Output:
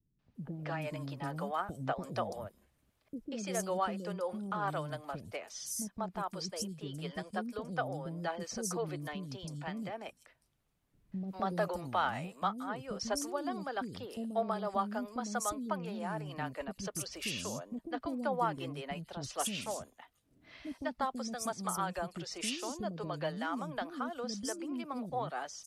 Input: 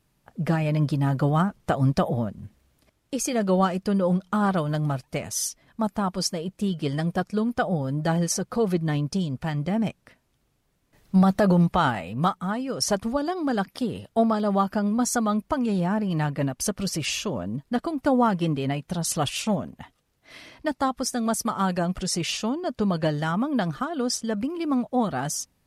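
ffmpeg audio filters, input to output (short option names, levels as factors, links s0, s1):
-filter_complex "[0:a]acrossover=split=370|5500[s0][s1][s2];[s1]adelay=190[s3];[s2]adelay=350[s4];[s0][s3][s4]amix=inputs=3:normalize=0,acrossover=split=340|640|3200[s5][s6][s7][s8];[s5]acompressor=threshold=0.02:ratio=6[s9];[s9][s6][s7][s8]amix=inputs=4:normalize=0,volume=0.376"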